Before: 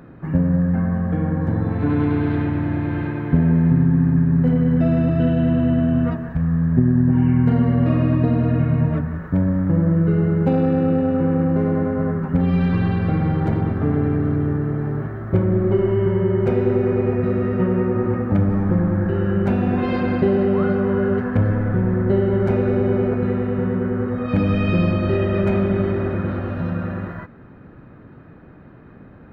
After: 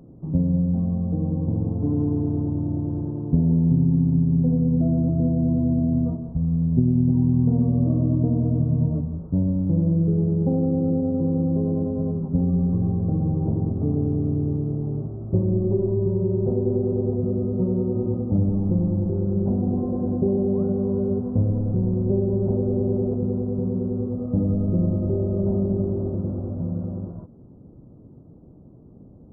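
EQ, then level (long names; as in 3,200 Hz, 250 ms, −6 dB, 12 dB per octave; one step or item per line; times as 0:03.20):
Gaussian smoothing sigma 13 samples
−2.5 dB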